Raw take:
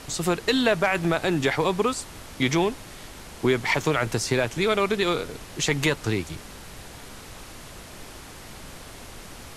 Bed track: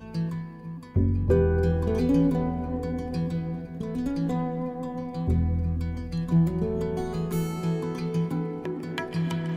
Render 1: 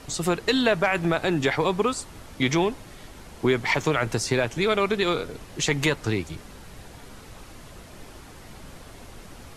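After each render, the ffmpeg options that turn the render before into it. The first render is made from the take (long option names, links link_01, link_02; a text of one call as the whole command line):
ffmpeg -i in.wav -af "afftdn=noise_reduction=6:noise_floor=-43" out.wav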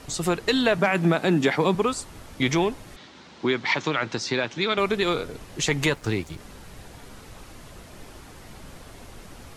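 ffmpeg -i in.wav -filter_complex "[0:a]asettb=1/sr,asplit=3[link_01][link_02][link_03];[link_01]atrim=end=0.784[link_04];[link_02]atrim=start=0.78:end=1.75,asetpts=PTS-STARTPTS,afade=type=in:duration=0.004:curve=qsin,afade=type=out:start_time=0.966:duration=0.004:curve=qsin,highpass=frequency=190:width_type=q:width=2.3[link_05];[link_03]atrim=start=1.746[link_06];[link_04][link_05]acrossfade=duration=0.004:curve1=hsin:curve2=qsin[link_07];[link_07][link_06]acrossfade=duration=0.004:curve1=qsin:curve2=hsin,asettb=1/sr,asplit=3[link_08][link_09][link_10];[link_08]atrim=end=2.964[link_11];[link_09]atrim=start=2.96:end=4.78,asetpts=PTS-STARTPTS,afade=type=in:duration=0.004:curve=qsin,afade=type=out:start_time=1.816:duration=0.004:curve=qsin,highpass=180,equalizer=frequency=440:width_type=q:width=4:gain=-5,equalizer=frequency=670:width_type=q:width=4:gain=-5,equalizer=frequency=3800:width_type=q:width=4:gain=5,lowpass=frequency=6000:width=0.5412,lowpass=frequency=6000:width=1.3066[link_12];[link_10]atrim=start=4.776[link_13];[link_11][link_12]acrossfade=duration=0.004:curve1=hsin:curve2=qsin[link_14];[link_14][link_13]acrossfade=duration=0.004:curve1=qsin:curve2=hsin,asettb=1/sr,asplit=3[link_15][link_16][link_17];[link_15]atrim=end=5.944[link_18];[link_16]atrim=start=5.94:end=6.4,asetpts=PTS-STARTPTS,afade=type=in:duration=0.004:curve=qsin,afade=type=out:start_time=0.456:duration=0.004:curve=qsin,aeval=exprs='sgn(val(0))*max(abs(val(0))-0.00355,0)':channel_layout=same[link_19];[link_17]atrim=start=6.396[link_20];[link_18][link_19]acrossfade=duration=0.004:curve1=hsin:curve2=qsin[link_21];[link_21][link_20]acrossfade=duration=0.004:curve1=qsin:curve2=hsin" out.wav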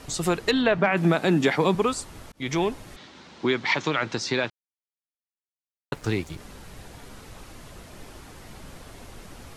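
ffmpeg -i in.wav -filter_complex "[0:a]asettb=1/sr,asplit=3[link_01][link_02][link_03];[link_01]atrim=end=0.514[link_04];[link_02]atrim=start=0.51:end=0.97,asetpts=PTS-STARTPTS,afade=type=in:duration=0.004:curve=qsin,afade=type=out:start_time=0.456:duration=0.004:curve=qsin,lowpass=3200[link_05];[link_03]atrim=start=0.966[link_06];[link_04][link_05]acrossfade=duration=0.004:curve1=hsin:curve2=qsin[link_07];[link_07][link_06]acrossfade=duration=0.004:curve1=qsin:curve2=hsin,asplit=4[link_08][link_09][link_10][link_11];[link_08]atrim=end=2.32,asetpts=PTS-STARTPTS,afade=type=out:start_time=2.316:duration=0.004:curve=hsin[link_12];[link_09]atrim=start=2.32:end=4.5,asetpts=PTS-STARTPTS,afade=type=in:duration=0.48:curve=qsin,afade=type=out:start_time=2.176:duration=0.004:curve=hsin[link_13];[link_10]atrim=start=4.5:end=5.92,asetpts=PTS-STARTPTS,volume=0[link_14];[link_11]atrim=start=5.92,asetpts=PTS-STARTPTS,afade=type=in:duration=0.004:curve=hsin[link_15];[link_12][link_13][link_14][link_15]concat=n=4:v=0:a=1" out.wav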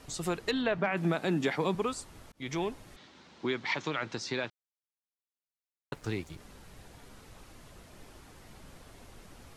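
ffmpeg -i in.wav -af "volume=-8.5dB" out.wav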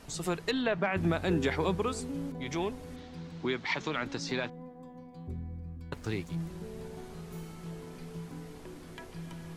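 ffmpeg -i in.wav -i bed.wav -filter_complex "[1:a]volume=-15.5dB[link_01];[0:a][link_01]amix=inputs=2:normalize=0" out.wav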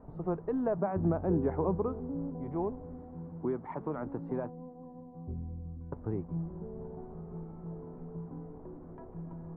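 ffmpeg -i in.wav -af "lowpass=frequency=1000:width=0.5412,lowpass=frequency=1000:width=1.3066" out.wav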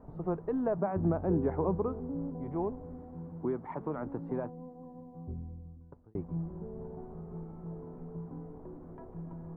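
ffmpeg -i in.wav -filter_complex "[0:a]asplit=2[link_01][link_02];[link_01]atrim=end=6.15,asetpts=PTS-STARTPTS,afade=type=out:start_time=5.22:duration=0.93[link_03];[link_02]atrim=start=6.15,asetpts=PTS-STARTPTS,afade=type=in:duration=0.004:curve=hsin[link_04];[link_03][link_04]concat=n=2:v=0:a=1" out.wav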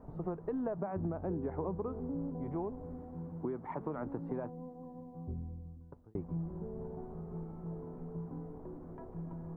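ffmpeg -i in.wav -af "acompressor=threshold=-33dB:ratio=6" out.wav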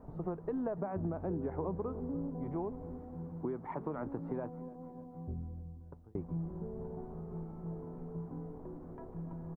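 ffmpeg -i in.wav -af "aecho=1:1:290|580|870|1160|1450:0.0891|0.0526|0.031|0.0183|0.0108" out.wav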